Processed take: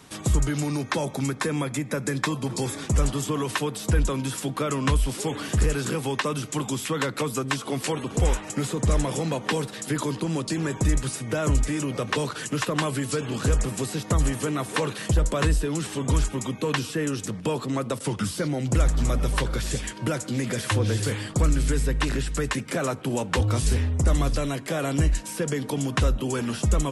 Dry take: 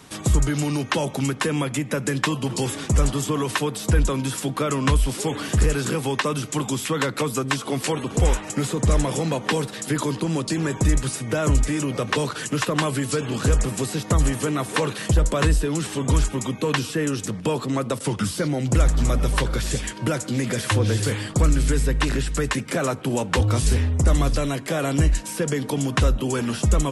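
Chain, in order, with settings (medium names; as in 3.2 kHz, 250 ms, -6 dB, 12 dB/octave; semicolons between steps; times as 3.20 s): 0.60–2.82 s: band-stop 2.9 kHz, Q 5.1; trim -3 dB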